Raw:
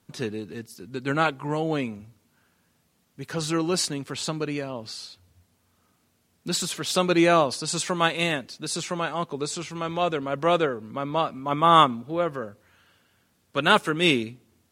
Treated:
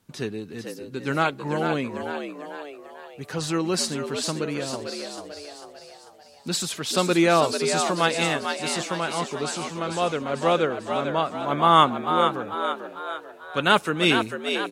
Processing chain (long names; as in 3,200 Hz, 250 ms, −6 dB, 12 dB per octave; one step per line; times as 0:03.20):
echo with shifted repeats 445 ms, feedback 50%, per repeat +73 Hz, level −6.5 dB